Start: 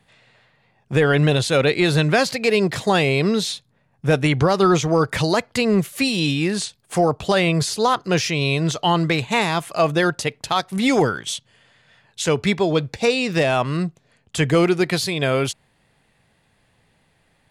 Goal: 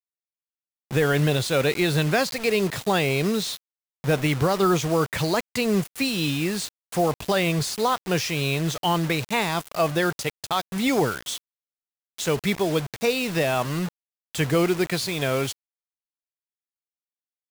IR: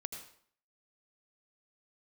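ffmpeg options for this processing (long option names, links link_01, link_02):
-af "acrusher=bits=4:mix=0:aa=0.000001,volume=-4.5dB"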